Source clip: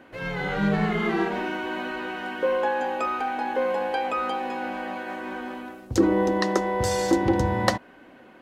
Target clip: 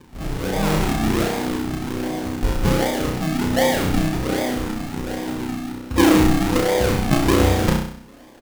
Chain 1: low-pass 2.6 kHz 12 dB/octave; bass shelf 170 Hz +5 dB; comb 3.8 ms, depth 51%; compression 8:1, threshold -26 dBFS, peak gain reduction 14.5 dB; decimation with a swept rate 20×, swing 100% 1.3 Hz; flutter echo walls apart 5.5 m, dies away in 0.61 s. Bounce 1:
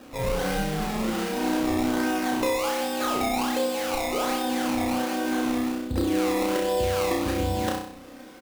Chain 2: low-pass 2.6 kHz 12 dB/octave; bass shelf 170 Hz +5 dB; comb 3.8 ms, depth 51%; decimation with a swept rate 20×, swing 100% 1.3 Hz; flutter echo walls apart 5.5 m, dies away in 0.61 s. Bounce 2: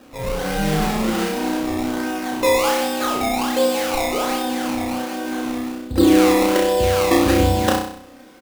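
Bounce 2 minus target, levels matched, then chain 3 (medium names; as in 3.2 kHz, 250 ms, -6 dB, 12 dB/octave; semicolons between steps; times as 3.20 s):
decimation with a swept rate: distortion -13 dB
low-pass 2.6 kHz 12 dB/octave; bass shelf 170 Hz +5 dB; comb 3.8 ms, depth 51%; decimation with a swept rate 62×, swing 100% 1.3 Hz; flutter echo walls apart 5.5 m, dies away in 0.61 s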